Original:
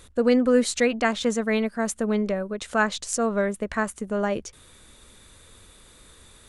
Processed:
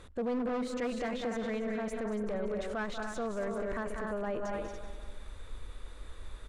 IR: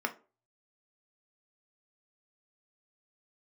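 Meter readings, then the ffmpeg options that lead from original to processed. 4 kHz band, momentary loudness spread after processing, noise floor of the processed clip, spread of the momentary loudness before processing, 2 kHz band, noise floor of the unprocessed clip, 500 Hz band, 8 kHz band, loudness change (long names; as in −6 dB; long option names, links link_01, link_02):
−14.0 dB, 16 LU, −49 dBFS, 8 LU, −12.5 dB, −53 dBFS, −10.0 dB, −20.0 dB, −11.5 dB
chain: -filter_complex "[0:a]lowshelf=frequency=230:gain=5,asplit=2[link_01][link_02];[link_02]aecho=0:1:190|380|570|760:0.2|0.0938|0.0441|0.0207[link_03];[link_01][link_03]amix=inputs=2:normalize=0,asubboost=boost=8:cutoff=50,asoftclip=type=hard:threshold=-14dB,asplit=2[link_04][link_05];[link_05]aecho=0:1:227.4|282.8:0.316|0.282[link_06];[link_04][link_06]amix=inputs=2:normalize=0,aeval=exprs='0.178*(abs(mod(val(0)/0.178+3,4)-2)-1)':channel_layout=same,alimiter=level_in=1dB:limit=-24dB:level=0:latency=1:release=16,volume=-1dB,asplit=2[link_07][link_08];[link_08]highpass=frequency=720:poles=1,volume=8dB,asoftclip=type=tanh:threshold=-25dB[link_09];[link_07][link_09]amix=inputs=2:normalize=0,lowpass=frequency=1000:poles=1,volume=-6dB"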